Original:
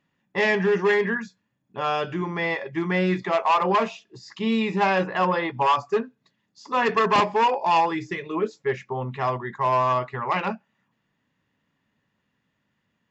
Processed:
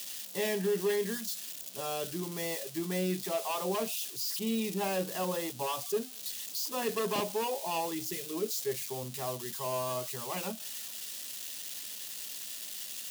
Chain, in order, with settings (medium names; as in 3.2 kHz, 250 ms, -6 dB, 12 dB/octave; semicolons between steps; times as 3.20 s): zero-crossing glitches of -19 dBFS; high-pass 130 Hz; high-order bell 1.4 kHz -9 dB; trim -8.5 dB